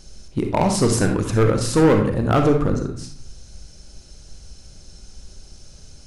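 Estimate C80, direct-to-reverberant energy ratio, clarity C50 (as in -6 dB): 11.0 dB, 4.0 dB, 6.0 dB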